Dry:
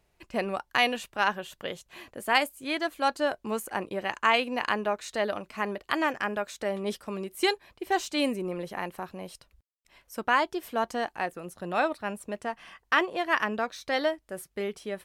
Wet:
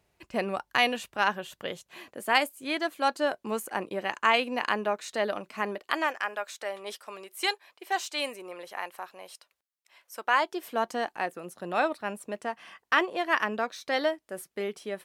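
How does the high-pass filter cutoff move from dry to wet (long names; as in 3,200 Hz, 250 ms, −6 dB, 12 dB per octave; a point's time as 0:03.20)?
0:01.48 60 Hz
0:02.03 160 Hz
0:05.62 160 Hz
0:06.19 660 Hz
0:10.15 660 Hz
0:10.79 190 Hz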